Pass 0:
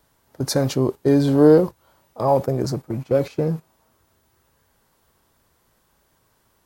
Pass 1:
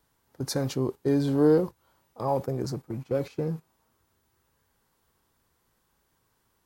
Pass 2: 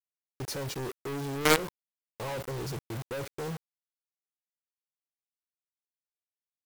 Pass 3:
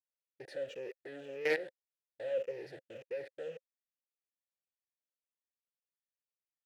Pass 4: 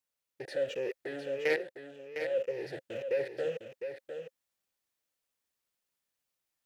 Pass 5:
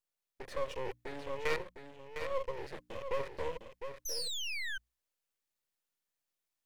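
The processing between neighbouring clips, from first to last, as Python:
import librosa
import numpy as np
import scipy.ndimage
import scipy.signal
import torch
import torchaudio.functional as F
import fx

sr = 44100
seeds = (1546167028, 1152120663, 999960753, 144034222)

y1 = fx.peak_eq(x, sr, hz=620.0, db=-7.0, octaves=0.22)
y1 = y1 * 10.0 ** (-7.5 / 20.0)
y2 = y1 + 0.41 * np.pad(y1, (int(2.1 * sr / 1000.0), 0))[:len(y1)]
y2 = fx.quant_companded(y2, sr, bits=2)
y2 = y2 * 10.0 ** (-9.0 / 20.0)
y3 = fx.spec_ripple(y2, sr, per_octave=0.81, drift_hz=-1.8, depth_db=9)
y3 = fx.vowel_filter(y3, sr, vowel='e')
y3 = y3 * 10.0 ** (2.5 / 20.0)
y4 = fx.rider(y3, sr, range_db=4, speed_s=0.5)
y4 = y4 + 10.0 ** (-8.0 / 20.0) * np.pad(y4, (int(706 * sr / 1000.0), 0))[:len(y4)]
y4 = y4 * 10.0 ** (5.5 / 20.0)
y5 = fx.spec_paint(y4, sr, seeds[0], shape='fall', start_s=4.05, length_s=0.73, low_hz=1500.0, high_hz=6300.0, level_db=-34.0)
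y5 = np.maximum(y5, 0.0)
y5 = fx.hum_notches(y5, sr, base_hz=60, count=5)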